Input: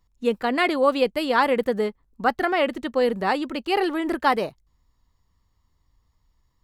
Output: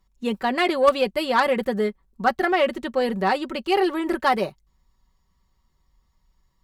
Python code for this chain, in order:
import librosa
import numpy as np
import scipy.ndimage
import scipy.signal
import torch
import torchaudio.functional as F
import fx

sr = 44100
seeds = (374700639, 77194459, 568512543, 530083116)

y = x + 0.57 * np.pad(x, (int(5.3 * sr / 1000.0), 0))[:len(x)]
y = fx.cheby_harmonics(y, sr, harmonics=(3, 5), levels_db=(-13, -21), full_scale_db=-5.0)
y = y * 10.0 ** (2.5 / 20.0)